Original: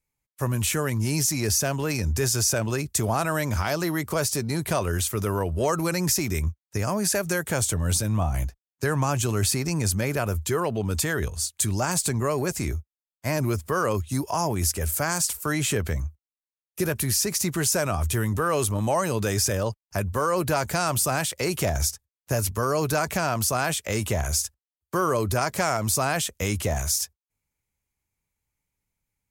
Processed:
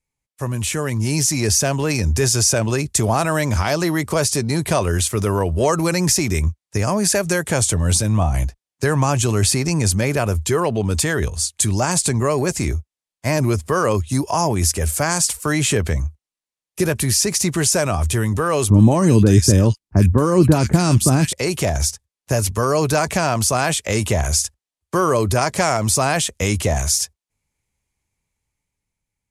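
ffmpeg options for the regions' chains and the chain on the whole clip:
-filter_complex "[0:a]asettb=1/sr,asplit=3[a][b][c];[a]atrim=end=18.704[d];[b]atrim=start=18.7:end=21.33,asetpts=PTS-STARTPTS,afade=t=in:d=0.004:c=qsin,afade=t=out:st=2.626:d=0.004:c=qsin,lowshelf=f=420:t=q:w=1.5:g=9.5,acrossover=split=1700[e][f];[f]adelay=40[g];[e][g]amix=inputs=2:normalize=0,atrim=end_sample=115983[h];[c]atrim=start=21.326[i];[d][h]acrossfade=d=0.004:c1=hsin:c2=qsin[j];[j][i]acrossfade=d=0.004:c1=qsin:c2=hsin,lowpass=f=11k:w=0.5412,lowpass=f=11k:w=1.3066,equalizer=f=1.4k:t=o:w=0.41:g=-3.5,dynaudnorm=f=180:g=11:m=5.5dB,volume=1.5dB"

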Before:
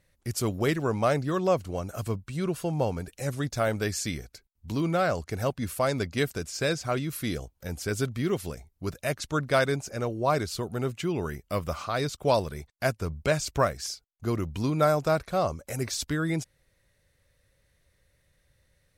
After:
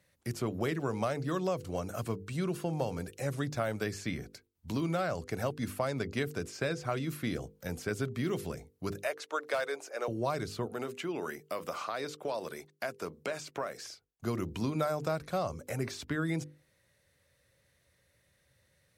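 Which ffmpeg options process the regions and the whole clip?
-filter_complex "[0:a]asettb=1/sr,asplit=3[a][b][c];[a]atrim=end=8.974[d];[b]atrim=start=8.97:end=10.08,asetpts=PTS-STARTPTS,afade=t=in:d=0.004:c=qsin,afade=t=out:st=1.106:d=0.004:c=qsin,highpass=f=420:w=0.5412,highpass=f=420:w=1.3066,asoftclip=type=hard:threshold=-18dB[e];[c]atrim=start=10.076[f];[d][e]acrossfade=d=0.004:c1=hsin:c2=qsin[g];[g][f]acrossfade=d=0.004:c1=qsin:c2=hsin,asettb=1/sr,asplit=3[h][i][j];[h]atrim=end=10.664[k];[i]atrim=start=10.66:end=13.82,asetpts=PTS-STARTPTS,afade=t=in:d=0.004:c=qsin,afade=t=out:st=3.156:d=0.004:c=qsin,highpass=300,acompressor=threshold=-30dB:ratio=4:attack=3.2:release=140:knee=1:detection=peak[l];[j]atrim=start=13.816[m];[k][l]acrossfade=d=0.004:c1=hsin:c2=qsin[n];[n][m]acrossfade=d=0.004:c1=qsin:c2=hsin,highpass=90,bandreject=f=50:t=h:w=6,bandreject=f=100:t=h:w=6,bandreject=f=150:t=h:w=6,bandreject=f=200:t=h:w=6,bandreject=f=250:t=h:w=6,bandreject=f=300:t=h:w=6,bandreject=f=350:t=h:w=6,bandreject=f=400:t=h:w=6,bandreject=f=450:t=h:w=6,bandreject=f=500:t=h:w=6,acrossover=split=120|2900[o][p][q];[o]acompressor=threshold=-44dB:ratio=4[r];[p]acompressor=threshold=-30dB:ratio=4[s];[q]acompressor=threshold=-49dB:ratio=4[t];[r][s][t]amix=inputs=3:normalize=0"

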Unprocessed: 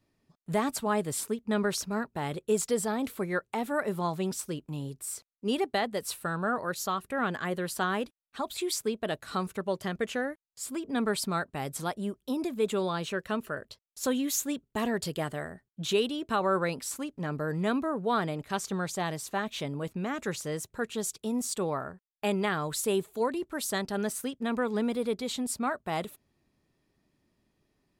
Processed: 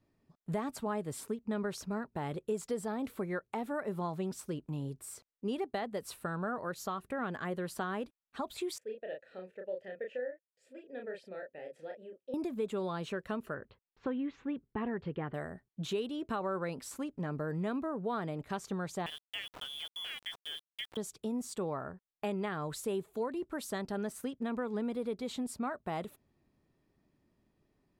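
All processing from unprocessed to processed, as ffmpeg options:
-filter_complex "[0:a]asettb=1/sr,asplit=3[a][b][c];[a]atrim=end=8.784[d];[b]atrim=start=8.78:end=12.34,asetpts=PTS-STARTPTS,afade=t=in:d=0.004:c=qsin,afade=t=out:st=3.556:d=0.004:c=qsin,asplit=3[e][f][g];[e]bandpass=f=530:t=q:w=8,volume=0dB[h];[f]bandpass=f=1.84k:t=q:w=8,volume=-6dB[i];[g]bandpass=f=2.48k:t=q:w=8,volume=-9dB[j];[h][i][j]amix=inputs=3:normalize=0,asplit=2[k][l];[l]adelay=32,volume=-3.5dB[m];[k][m]amix=inputs=2:normalize=0,atrim=end_sample=156996[n];[c]atrim=start=12.336[o];[d][n]acrossfade=d=0.004:c1=hsin:c2=qsin[p];[p][o]acrossfade=d=0.004:c1=qsin:c2=hsin,asettb=1/sr,asplit=3[q][r][s];[q]atrim=end=13.544[t];[r]atrim=start=13.54:end=15.34,asetpts=PTS-STARTPTS,afade=t=in:d=0.004:c=qsin,afade=t=out:st=1.796:d=0.004:c=qsin,lowpass=f=2.6k:w=0.5412,lowpass=f=2.6k:w=1.3066,bandreject=f=630:w=5[u];[s]atrim=start=15.336[v];[t][u]acrossfade=d=0.004:c1=hsin:c2=qsin[w];[w][v]acrossfade=d=0.004:c1=qsin:c2=hsin,asettb=1/sr,asplit=3[x][y][z];[x]atrim=end=19.064[aa];[y]atrim=start=19.06:end=20.97,asetpts=PTS-STARTPTS,afade=t=in:d=0.004:c=qsin,afade=t=out:st=1.906:d=0.004:c=qsin,lowpass=f=3.1k:t=q:w=0.5098,lowpass=f=3.1k:t=q:w=0.6013,lowpass=f=3.1k:t=q:w=0.9,lowpass=f=3.1k:t=q:w=2.563,afreqshift=-3600,aeval=exprs='val(0)*gte(abs(val(0)),0.0133)':c=same[ab];[z]atrim=start=20.966[ac];[aa][ab]acrossfade=d=0.004:c1=hsin:c2=qsin[ad];[ad][ac]acrossfade=d=0.004:c1=qsin:c2=hsin,acompressor=threshold=-34dB:ratio=2.5,highshelf=f=2.3k:g=-9"

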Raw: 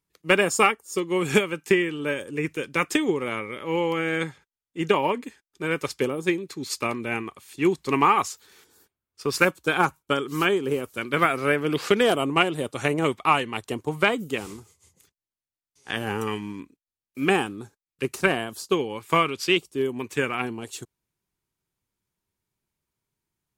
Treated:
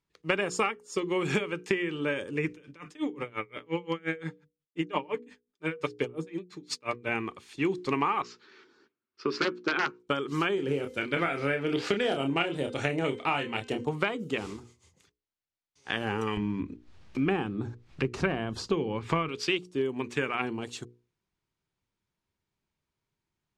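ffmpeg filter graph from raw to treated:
-filter_complex "[0:a]asettb=1/sr,asplit=3[a][b][c];[a]atrim=end=2.524[d];[b]atrim=start=2.52:end=7.09,asetpts=PTS-STARTPTS,afade=t=in:d=0.004:c=qsin,afade=t=out:st=4.566:d=0.004:c=qsin,bandreject=f=50:t=h:w=6,bandreject=f=100:t=h:w=6,bandreject=f=150:t=h:w=6,bandreject=f=200:t=h:w=6,bandreject=f=250:t=h:w=6,aecho=1:1:6.7:0.41,atrim=end_sample=201537,aeval=exprs='val(0)*pow(10,-32*(0.5-0.5*cos(2*PI*5.7*n/s))/20)':c=same[e];[c]atrim=start=7.086[f];[d][e]acrossfade=d=0.004:c1=hsin:c2=qsin[g];[g][f]acrossfade=d=0.004:c1=qsin:c2=hsin,asettb=1/sr,asplit=3[h][i][j];[h]atrim=end=8.224[k];[i]atrim=start=8.22:end=10,asetpts=PTS-STARTPTS,afade=t=in:d=0.004:c=qsin,afade=t=out:st=1.776:d=0.004:c=qsin,aeval=exprs='(mod(3.76*val(0)+1,2)-1)/3.76':c=same,highpass=220,equalizer=f=240:t=q:w=4:g=6,equalizer=f=360:t=q:w=4:g=8,equalizer=f=500:t=q:w=4:g=-5,equalizer=f=750:t=q:w=4:g=-8,equalizer=f=1.4k:t=q:w=4:g=4,equalizer=f=3.5k:t=q:w=4:g=-5,lowpass=f=4.9k:w=0.5412,lowpass=f=4.9k:w=1.3066,asplit=2[l][m];[m]adelay=13,volume=-13dB[n];[l][n]amix=inputs=2:normalize=0,atrim=end_sample=78498[o];[j]atrim=start=9.996[p];[k][o]acrossfade=d=0.004:c1=hsin:c2=qsin[q];[q][p]acrossfade=d=0.004:c1=qsin:c2=hsin,asettb=1/sr,asplit=3[r][s][t];[r]atrim=end=10.554[u];[s]atrim=start=10.55:end=13.85,asetpts=PTS-STARTPTS,afade=t=in:d=0.004:c=qsin,afade=t=out:st=3.296:d=0.004:c=qsin,equalizer=f=1.1k:t=o:w=0.25:g=-12,asplit=2[v][w];[w]adelay=29,volume=-6dB[x];[v][x]amix=inputs=2:normalize=0,atrim=end_sample=145530,bandreject=f=258.5:t=h:w=4,bandreject=f=517:t=h:w=4,bandreject=f=775.5:t=h:w=4,bandreject=f=1.034k:t=h:w=4,bandreject=f=1.2925k:t=h:w=4,bandreject=f=1.551k:t=h:w=4,bandreject=f=1.8095k:t=h:w=4,bandreject=f=2.068k:t=h:w=4,bandreject=f=2.3265k:t=h:w=4,bandreject=f=2.585k:t=h:w=4,bandreject=f=2.8435k:t=h:w=4,bandreject=f=3.102k:t=h:w=4,bandreject=f=3.3605k:t=h:w=4,bandreject=f=3.619k:t=h:w=4,bandreject=f=3.8775k:t=h:w=4,bandreject=f=4.136k:t=h:w=4,bandreject=f=4.3945k:t=h:w=4,bandreject=f=4.653k:t=h:w=4,bandreject=f=4.9115k:t=h:w=4,bandreject=f=5.17k:t=h:w=4,bandreject=f=5.4285k:t=h:w=4,bandreject=f=5.687k:t=h:w=4,bandreject=f=5.9455k:t=h:w=4,bandreject=f=6.204k:t=h:w=4,bandreject=f=6.4625k:t=h:w=4,bandreject=f=6.721k:t=h:w=4,bandreject=f=6.9795k:t=h:w=4,bandreject=f=7.238k:t=h:w=4,bandreject=f=7.4965k:t=h:w=4,bandreject=f=7.755k:t=h:w=4,bandreject=f=8.0135k:t=h:w=4,bandreject=f=8.272k:t=h:w=4,bandreject=f=8.5305k:t=h:w=4,bandreject=f=8.789k:t=h:w=4,bandreject=f=9.0475k:t=h:w=4,bandreject=f=9.306k:t=h:w=4[y];[t]atrim=start=13.846[z];[u][y]acrossfade=d=0.004:c1=hsin:c2=qsin[aa];[aa][z]acrossfade=d=0.004:c1=qsin:c2=hsin,asettb=1/sr,asplit=3[ab][ac][ad];[ab]atrim=end=16.374[ae];[ac]atrim=start=16.37:end=19.29,asetpts=PTS-STARTPTS,afade=t=in:d=0.004:c=qsin,afade=t=out:st=2.916:d=0.004:c=qsin,aemphasis=mode=reproduction:type=bsi,acompressor=mode=upward:threshold=-23dB:ratio=2.5:attack=3.2:release=140:knee=2.83:detection=peak,bandreject=f=50:t=h:w=6,bandreject=f=100:t=h:w=6[af];[ad]atrim=start=19.286[ag];[ae][af]acrossfade=d=0.004:c1=hsin:c2=qsin[ah];[ah][ag]acrossfade=d=0.004:c1=qsin:c2=hsin,lowpass=5.3k,bandreject=f=60:t=h:w=6,bandreject=f=120:t=h:w=6,bandreject=f=180:t=h:w=6,bandreject=f=240:t=h:w=6,bandreject=f=300:t=h:w=6,bandreject=f=360:t=h:w=6,bandreject=f=420:t=h:w=6,bandreject=f=480:t=h:w=6,acompressor=threshold=-25dB:ratio=4"

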